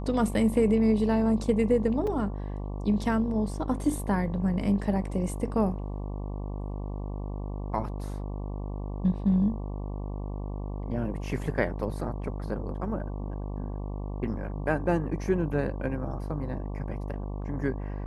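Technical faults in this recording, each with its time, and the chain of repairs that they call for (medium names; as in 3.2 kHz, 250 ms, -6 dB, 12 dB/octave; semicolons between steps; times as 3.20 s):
buzz 50 Hz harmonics 23 -34 dBFS
2.07 s: dropout 3.8 ms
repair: de-hum 50 Hz, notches 23; interpolate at 2.07 s, 3.8 ms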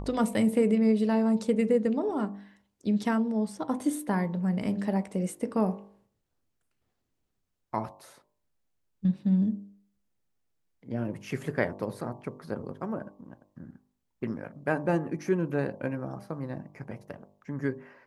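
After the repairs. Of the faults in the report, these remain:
nothing left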